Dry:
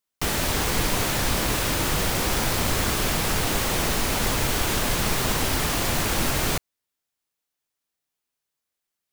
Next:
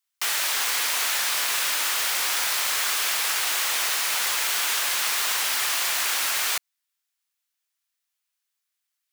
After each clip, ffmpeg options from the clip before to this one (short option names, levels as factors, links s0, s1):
-af "highpass=1300,volume=1.41"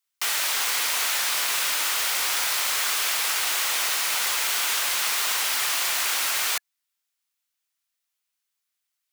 -af "bandreject=f=1700:w=29"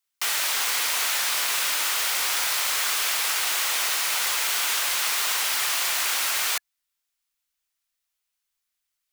-af "asubboost=boost=6.5:cutoff=50"